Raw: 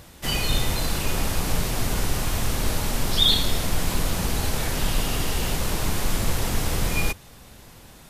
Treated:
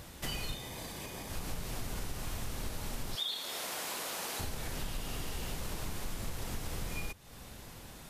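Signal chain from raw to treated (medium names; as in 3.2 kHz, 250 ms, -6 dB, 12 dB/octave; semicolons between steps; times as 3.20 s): 3.15–4.40 s: high-pass 500 Hz 12 dB/octave; compression 4:1, threshold -34 dBFS, peak gain reduction 16 dB; 0.54–1.30 s: comb of notches 1.4 kHz; trim -2.5 dB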